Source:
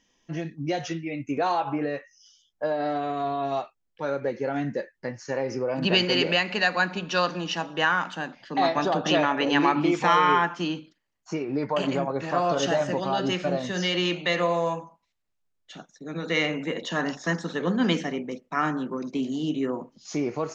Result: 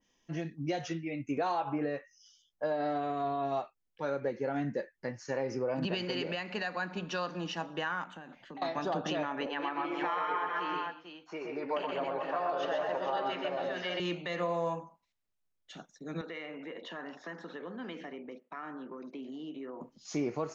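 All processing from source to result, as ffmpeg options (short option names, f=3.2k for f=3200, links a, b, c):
-filter_complex "[0:a]asettb=1/sr,asplit=3[a][b][c];[a]atrim=end=8.044[d];[b]atrim=start=8.04:end=8.62,asetpts=PTS-STARTPTS,afade=t=in:d=0.004:c=qsin,afade=t=out:st=0.576:d=0.004:c=qsin,equalizer=f=5k:t=o:w=0.44:g=-14,bandreject=f=1.7k:w=26,acompressor=threshold=-37dB:ratio=12:attack=3.2:release=140:knee=1:detection=peak[e];[c]atrim=start=8.616[f];[d][e]acrossfade=d=0.004:c1=hsin:c2=qsin[g];[g][f]acrossfade=d=0.004:c1=qsin:c2=hsin,asettb=1/sr,asplit=3[h][i][j];[h]atrim=end=9.464[k];[i]atrim=start=9.46:end=14,asetpts=PTS-STARTPTS,afade=t=in:d=0.004:c=qsin,afade=t=out:st=4.536:d=0.004:c=qsin,acrossover=split=400 4200:gain=0.126 1 0.0708[l][m][n];[l][m][n]amix=inputs=3:normalize=0,aecho=1:1:122|133|266|448:0.531|0.596|0.188|0.335,atrim=end_sample=200214[o];[j]atrim=start=13.996[p];[k][o]acrossfade=d=0.004:c1=hsin:c2=qsin[q];[q][p]acrossfade=d=0.004:c1=qsin:c2=hsin,asettb=1/sr,asplit=3[r][s][t];[r]atrim=end=16.214[u];[s]atrim=start=16.21:end=19.81,asetpts=PTS-STARTPTS,afade=t=in:d=0.004:c=qsin,afade=t=out:st=3.596:d=0.004:c=qsin,highpass=290,lowpass=2.8k,acompressor=threshold=-36dB:ratio=3:attack=3.2:release=140:knee=1:detection=peak[v];[t]atrim=start=19.806[w];[u][v]acrossfade=d=0.004:c1=hsin:c2=qsin[x];[x][w]acrossfade=d=0.004:c1=qsin:c2=hsin,alimiter=limit=-18dB:level=0:latency=1:release=201,adynamicequalizer=threshold=0.00794:dfrequency=2000:dqfactor=0.7:tfrequency=2000:tqfactor=0.7:attack=5:release=100:ratio=0.375:range=2.5:mode=cutabove:tftype=highshelf,volume=-5dB"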